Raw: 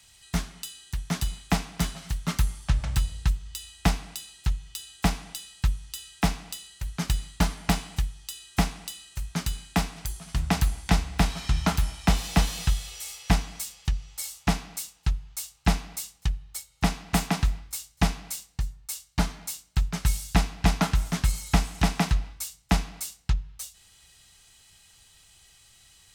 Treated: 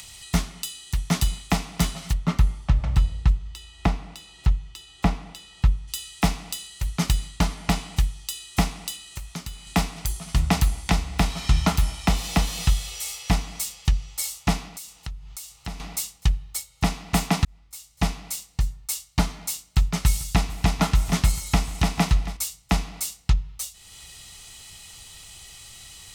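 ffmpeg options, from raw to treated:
-filter_complex "[0:a]asplit=3[a][b][c];[a]afade=t=out:st=2.12:d=0.02[d];[b]lowpass=f=1.5k:p=1,afade=t=in:st=2.12:d=0.02,afade=t=out:st=5.87:d=0.02[e];[c]afade=t=in:st=5.87:d=0.02[f];[d][e][f]amix=inputs=3:normalize=0,asettb=1/sr,asplit=3[g][h][i];[g]atrim=end=7.284[j];[h]atrim=start=7.28:end=7.98,asetpts=PTS-STARTPTS,afade=t=in:d=0.004:c=qsin,afade=t=out:st=0.696:d=0.004:c=qsin,highshelf=f=11k:g=-6[k];[i]atrim=start=7.976[l];[j][k]acrossfade=d=0.004:c1=hsin:c2=qsin[m];[m][l]acrossfade=d=0.004:c1=qsin:c2=hsin,asettb=1/sr,asplit=3[n][o][p];[n]atrim=end=8.954[q];[o]atrim=start=8.95:end=9.67,asetpts=PTS-STARTPTS,afade=t=in:d=0.004:c=qsin,afade=t=out:st=0.716:d=0.004:c=qsin,acrossover=split=430|3500[r][s][t];[r]acompressor=threshold=-41dB:ratio=4[u];[s]acompressor=threshold=-49dB:ratio=4[v];[t]acompressor=threshold=-48dB:ratio=4[w];[u][v][w]amix=inputs=3:normalize=0[x];[p]atrim=start=9.666[y];[q][x]acrossfade=d=0.004:c1=hsin:c2=qsin[z];[z][y]acrossfade=d=0.004:c1=qsin:c2=hsin,asettb=1/sr,asplit=3[aa][ab][ac];[aa]atrim=end=14.684[ad];[ab]atrim=start=14.68:end=15.8,asetpts=PTS-STARTPTS,afade=t=in:d=0.004:c=qsin,afade=t=out:st=1.116:d=0.004:c=qsin,acompressor=threshold=-44dB:ratio=2.5:attack=3.2:release=140:knee=1:detection=peak[ae];[ac]atrim=start=15.796[af];[ad][ae]acrossfade=d=0.004:c1=hsin:c2=qsin[ag];[ag][af]acrossfade=d=0.004:c1=qsin:c2=hsin,asettb=1/sr,asplit=3[ah][ai][aj];[ah]atrim=end=19.634[ak];[ai]atrim=start=19.63:end=22.37,asetpts=PTS-STARTPTS,afade=t=in:d=0.004:c=qsin,afade=t=out:st=2.736:d=0.004:c=qsin,aecho=1:1:440:0.133,atrim=end_sample=120834[al];[aj]atrim=start=22.366[am];[ak][al]acrossfade=d=0.004:c1=hsin:c2=qsin[an];[an][am]acrossfade=d=0.004:c1=qsin:c2=hsin,asplit=2[ao][ap];[ao]atrim=end=17.45,asetpts=PTS-STARTPTS,afade=t=out:st=17.446:d=0.004:c=hsin[aq];[ap]atrim=start=17.45,asetpts=PTS-STARTPTS,afade=t=in:d=1.22[ar];[aq][ar]concat=n=2:v=0:a=1,bandreject=f=1.6k:w=7.4,alimiter=limit=-14dB:level=0:latency=1:release=358,acompressor=mode=upward:threshold=-42dB:ratio=2.5,volume=6dB"

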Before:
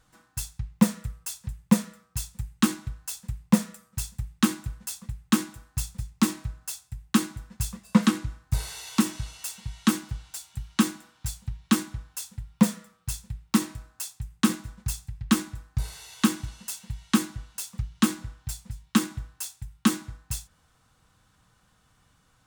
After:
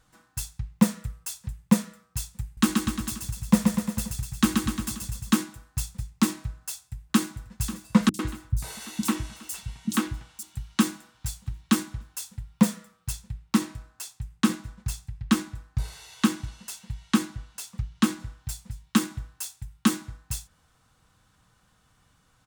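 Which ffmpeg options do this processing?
-filter_complex "[0:a]asettb=1/sr,asplit=3[a][b][c];[a]atrim=end=2.444[d];[b]atrim=start=2.44:end=5.34,asetpts=PTS-STARTPTS,afade=t=in:d=0.004:c=qsin,afade=t=out:st=2.896:d=0.004:c=qsin,aecho=1:1:130|247|352.3|447.1|532.4:0.631|0.398|0.251|0.158|0.1,atrim=end_sample=127890[e];[c]atrim=start=5.336[f];[d][e]acrossfade=d=0.004:c1=hsin:c2=qsin[g];[g][f]acrossfade=d=0.004:c1=qsin:c2=hsin,asplit=2[h][i];[i]afade=t=in:st=6.55:d=0.01,afade=t=out:st=7.56:d=0.01,aecho=0:1:540|1080|1620|2160|2700|3240|3780|4320|4860:0.199526|0.139668|0.0977679|0.0684375|0.0479062|0.0335344|0.0234741|0.0164318|0.0115023[j];[h][j]amix=inputs=2:normalize=0,asettb=1/sr,asplit=3[k][l][m];[k]atrim=end=8.094[n];[l]atrim=start=8.09:end=10.43,asetpts=PTS-STARTPTS,afade=t=in:d=0.004:c=qsin,afade=t=out:st=2.336:d=0.004:c=qsin,acrossover=split=200|4600[o][p][q];[q]adelay=50[r];[p]adelay=100[s];[o][s][r]amix=inputs=3:normalize=0,atrim=end_sample=103194[t];[m]atrim=start=10.426[u];[n][t]acrossfade=d=0.004:c1=hsin:c2=qsin[v];[v][u]acrossfade=d=0.004:c1=qsin:c2=hsin,asettb=1/sr,asplit=3[w][x][y];[w]atrim=end=13.124[z];[x]atrim=start=13.12:end=18.2,asetpts=PTS-STARTPTS,afade=t=in:d=0.004:c=qsin,afade=t=out:st=5.076:d=0.004:c=qsin,highshelf=f=7.4k:g=-6[aa];[y]atrim=start=18.196[ab];[z][aa]acrossfade=d=0.004:c1=hsin:c2=qsin[ac];[ac][ab]acrossfade=d=0.004:c1=qsin:c2=hsin"

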